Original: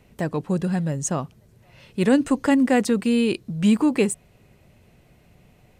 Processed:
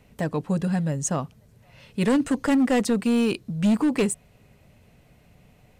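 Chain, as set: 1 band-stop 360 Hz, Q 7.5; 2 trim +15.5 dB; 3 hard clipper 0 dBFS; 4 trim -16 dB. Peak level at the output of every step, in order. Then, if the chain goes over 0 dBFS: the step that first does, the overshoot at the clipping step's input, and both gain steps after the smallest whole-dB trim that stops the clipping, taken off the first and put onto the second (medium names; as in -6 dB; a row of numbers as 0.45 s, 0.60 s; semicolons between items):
-7.0 dBFS, +8.5 dBFS, 0.0 dBFS, -16.0 dBFS; step 2, 8.5 dB; step 2 +6.5 dB, step 4 -7 dB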